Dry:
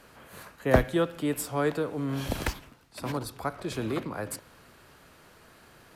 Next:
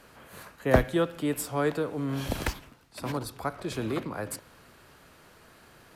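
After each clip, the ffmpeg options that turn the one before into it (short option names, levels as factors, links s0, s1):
-af anull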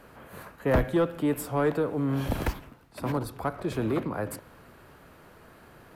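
-af "asoftclip=type=tanh:threshold=0.0944,equalizer=f=5900:w=0.42:g=-10.5,volume=1.68"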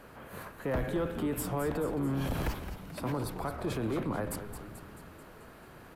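-filter_complex "[0:a]alimiter=level_in=1.19:limit=0.0631:level=0:latency=1:release=21,volume=0.841,asplit=2[s0][s1];[s1]asplit=7[s2][s3][s4][s5][s6][s7][s8];[s2]adelay=218,afreqshift=-110,volume=0.316[s9];[s3]adelay=436,afreqshift=-220,volume=0.191[s10];[s4]adelay=654,afreqshift=-330,volume=0.114[s11];[s5]adelay=872,afreqshift=-440,volume=0.0684[s12];[s6]adelay=1090,afreqshift=-550,volume=0.0412[s13];[s7]adelay=1308,afreqshift=-660,volume=0.0245[s14];[s8]adelay=1526,afreqshift=-770,volume=0.0148[s15];[s9][s10][s11][s12][s13][s14][s15]amix=inputs=7:normalize=0[s16];[s0][s16]amix=inputs=2:normalize=0"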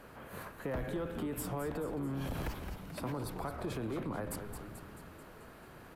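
-af "acompressor=threshold=0.02:ratio=2.5,volume=0.841"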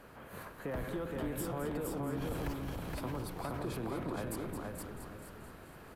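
-af "aecho=1:1:469|938|1407|1876:0.708|0.205|0.0595|0.0173,volume=0.841"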